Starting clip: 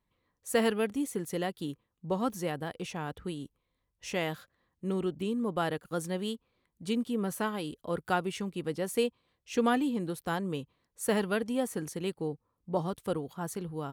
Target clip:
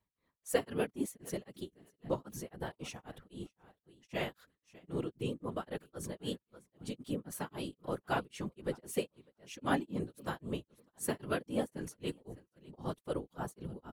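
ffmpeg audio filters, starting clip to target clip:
ffmpeg -i in.wav -af "aecho=1:1:604|1208:0.0891|0.016,tremolo=f=3.8:d=1,afftfilt=real='hypot(re,im)*cos(2*PI*random(0))':imag='hypot(re,im)*sin(2*PI*random(1))':win_size=512:overlap=0.75,volume=3.5dB" out.wav

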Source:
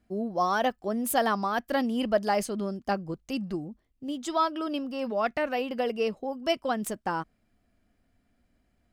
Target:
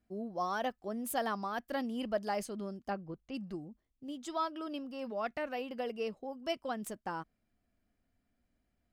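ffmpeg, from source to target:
ffmpeg -i in.wav -filter_complex "[0:a]asplit=3[link_01][link_02][link_03];[link_01]afade=type=out:start_time=2.89:duration=0.02[link_04];[link_02]lowpass=3300,afade=type=in:start_time=2.89:duration=0.02,afade=type=out:start_time=3.33:duration=0.02[link_05];[link_03]afade=type=in:start_time=3.33:duration=0.02[link_06];[link_04][link_05][link_06]amix=inputs=3:normalize=0,volume=-9dB" out.wav

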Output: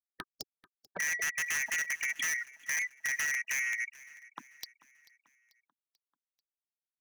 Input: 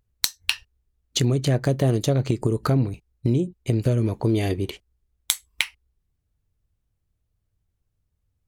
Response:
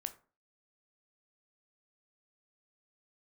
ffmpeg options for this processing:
-filter_complex "[0:a]afftfilt=real='real(if(lt(b,272),68*(eq(floor(b/68),0)*3+eq(floor(b/68),1)*0+eq(floor(b/68),2)*1+eq(floor(b/68),3)*2)+mod(b,68),b),0)':imag='imag(if(lt(b,272),68*(eq(floor(b/68),0)*3+eq(floor(b/68),1)*0+eq(floor(b/68),2)*1+eq(floor(b/68),3)*2)+mod(b,68),b),0)':win_size=2048:overlap=0.75,lowpass=frequency=1300:poles=1,afftfilt=real='re*gte(hypot(re,im),0.00708)':imag='im*gte(hypot(re,im),0.00708)':win_size=1024:overlap=0.75,afwtdn=0.0126,bandreject=frequency=60:width_type=h:width=6,bandreject=frequency=120:width_type=h:width=6,bandreject=frequency=180:width_type=h:width=6,bandreject=frequency=240:width_type=h:width=6,bandreject=frequency=300:width_type=h:width=6,bandreject=frequency=360:width_type=h:width=6,bandreject=frequency=420:width_type=h:width=6,bandreject=frequency=480:width_type=h:width=6,afftfilt=real='re*gte(hypot(re,im),0.0447)':imag='im*gte(hypot(re,im),0.0447)':win_size=1024:overlap=0.75,highpass=170,lowshelf=frequency=240:gain=-8.5,aeval=exprs='(mod(8.41*val(0)+1,2)-1)/8.41':channel_layout=same,asetrate=53361,aresample=44100,asoftclip=type=tanh:threshold=-29.5dB,asplit=2[link_01][link_02];[link_02]aecho=0:1:439|878|1317|1756:0.0891|0.0446|0.0223|0.0111[link_03];[link_01][link_03]amix=inputs=2:normalize=0"

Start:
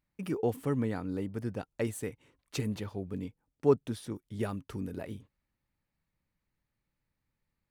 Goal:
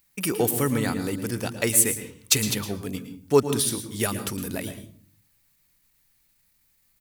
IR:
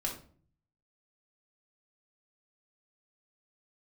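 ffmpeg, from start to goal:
-filter_complex "[0:a]atempo=1.1,crystalizer=i=9.5:c=0,asplit=2[link_01][link_02];[1:a]atrim=start_sample=2205,lowshelf=frequency=230:gain=6,adelay=111[link_03];[link_02][link_03]afir=irnorm=-1:irlink=0,volume=-12.5dB[link_04];[link_01][link_04]amix=inputs=2:normalize=0,volume=4.5dB"

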